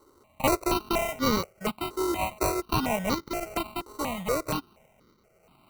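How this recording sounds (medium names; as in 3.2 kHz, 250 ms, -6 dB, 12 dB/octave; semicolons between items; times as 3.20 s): a buzz of ramps at a fixed pitch in blocks of 16 samples; random-step tremolo; aliases and images of a low sample rate 1.7 kHz, jitter 0%; notches that jump at a steady rate 4.2 Hz 680–2600 Hz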